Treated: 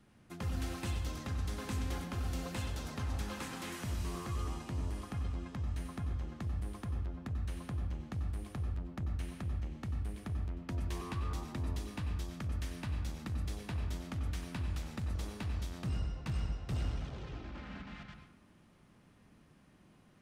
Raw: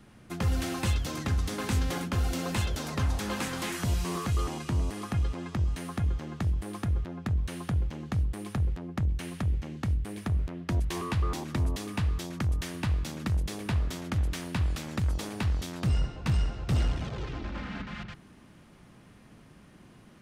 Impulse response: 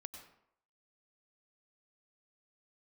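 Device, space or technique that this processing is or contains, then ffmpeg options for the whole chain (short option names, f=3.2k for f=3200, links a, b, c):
bathroom: -filter_complex "[1:a]atrim=start_sample=2205[a];[0:a][a]afir=irnorm=-1:irlink=0,volume=-4.5dB"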